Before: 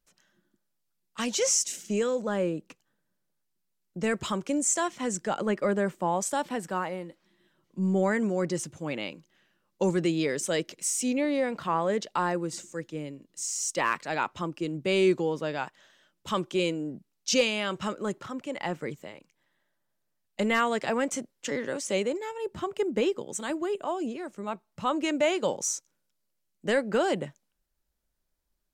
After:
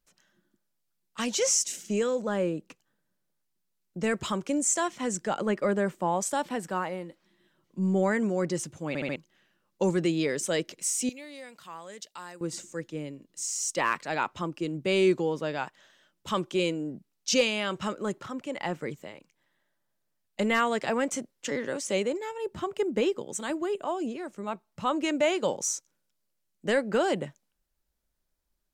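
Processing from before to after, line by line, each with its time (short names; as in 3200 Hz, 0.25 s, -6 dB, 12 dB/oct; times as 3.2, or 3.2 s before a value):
8.88 stutter in place 0.07 s, 4 plays
11.09–12.41 pre-emphasis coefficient 0.9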